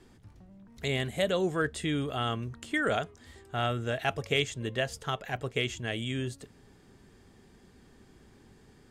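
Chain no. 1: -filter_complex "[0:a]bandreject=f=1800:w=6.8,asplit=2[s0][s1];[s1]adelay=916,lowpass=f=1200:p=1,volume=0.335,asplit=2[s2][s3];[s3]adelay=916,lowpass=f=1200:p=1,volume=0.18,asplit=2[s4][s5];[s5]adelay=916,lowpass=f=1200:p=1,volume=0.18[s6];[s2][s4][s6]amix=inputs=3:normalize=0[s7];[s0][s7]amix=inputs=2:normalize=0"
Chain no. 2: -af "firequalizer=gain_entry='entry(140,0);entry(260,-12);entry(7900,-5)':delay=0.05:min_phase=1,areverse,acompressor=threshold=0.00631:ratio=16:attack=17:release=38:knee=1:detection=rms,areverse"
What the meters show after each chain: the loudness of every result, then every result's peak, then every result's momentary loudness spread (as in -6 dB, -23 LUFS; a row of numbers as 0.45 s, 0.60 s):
-32.0 LUFS, -47.0 LUFS; -13.0 dBFS, -30.5 dBFS; 15 LU, 17 LU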